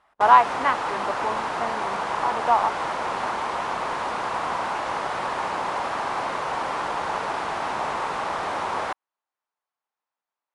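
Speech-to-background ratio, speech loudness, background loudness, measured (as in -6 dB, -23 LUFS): 5.5 dB, -22.0 LUFS, -27.5 LUFS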